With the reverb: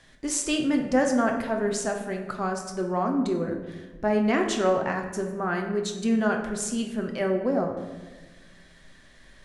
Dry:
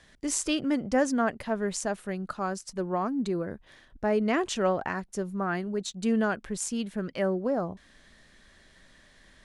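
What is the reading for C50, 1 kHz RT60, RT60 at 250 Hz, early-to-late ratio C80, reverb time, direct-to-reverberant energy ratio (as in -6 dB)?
6.0 dB, 1.1 s, 1.9 s, 8.5 dB, 1.3 s, 2.5 dB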